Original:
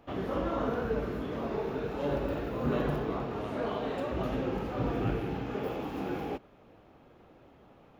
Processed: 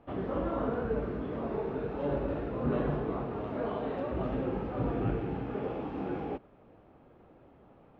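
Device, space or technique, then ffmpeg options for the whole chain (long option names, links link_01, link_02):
phone in a pocket: -af "lowpass=3800,highshelf=frequency=2100:gain=-9.5"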